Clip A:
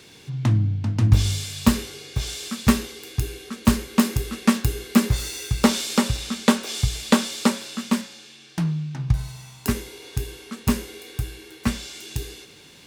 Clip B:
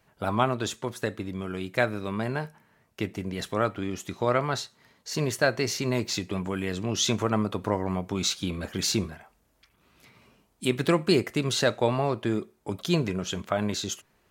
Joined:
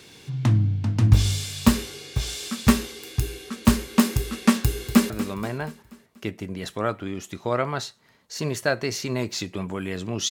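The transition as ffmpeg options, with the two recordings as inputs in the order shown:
-filter_complex "[0:a]apad=whole_dur=10.3,atrim=end=10.3,atrim=end=5.102[a];[1:a]atrim=start=1.858:end=7.06[b];[a][b]acrossfade=d=0.004:c1=hsin:c2=hsin,asplit=2[c][d];[d]afade=t=in:st=4.62:d=0.01,afade=t=out:st=5.1:d=0.01,aecho=0:1:240|480|720|960|1200:0.251189|0.125594|0.0627972|0.0313986|0.0156993[e];[c][e]amix=inputs=2:normalize=0"

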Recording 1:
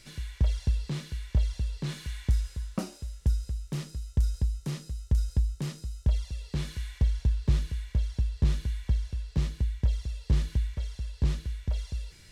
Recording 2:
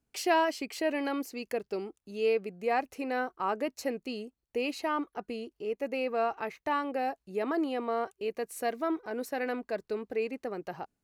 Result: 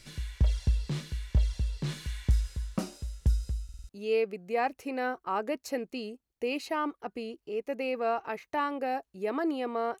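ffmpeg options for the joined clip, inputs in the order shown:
-filter_complex "[0:a]apad=whole_dur=10,atrim=end=10,asplit=5[a][b][c][d][e];[a]atrim=end=3.692[f];[b]atrim=start=3.638:end=3.692[g];[c]atrim=start=3.638:end=3.692[h];[d]atrim=start=3.638:end=3.692[i];[e]atrim=start=3.638:end=3.692[j];[1:a]atrim=start=2.018:end=8.13[k];[f][g]acrossfade=d=0.004:c1=hsin:c2=hsin[l];[l][h]acrossfade=d=0.004:c1=hsin:c2=hsin[m];[m][i]acrossfade=d=0.004:c1=hsin:c2=hsin[n];[n][j]acrossfade=d=0.004:c1=hsin:c2=hsin[o];[o][k]acrossfade=d=0.004:c1=hsin:c2=hsin"

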